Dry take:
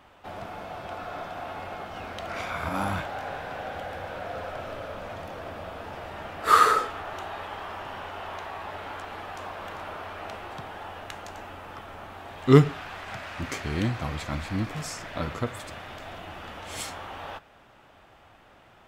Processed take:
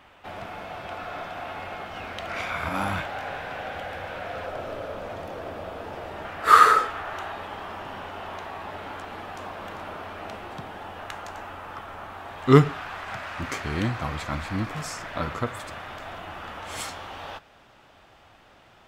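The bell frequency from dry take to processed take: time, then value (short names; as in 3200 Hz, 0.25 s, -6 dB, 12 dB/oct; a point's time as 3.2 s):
bell +5 dB 1.4 oct
2300 Hz
from 4.46 s 410 Hz
from 6.25 s 1600 Hz
from 7.32 s 220 Hz
from 10.99 s 1200 Hz
from 16.89 s 4900 Hz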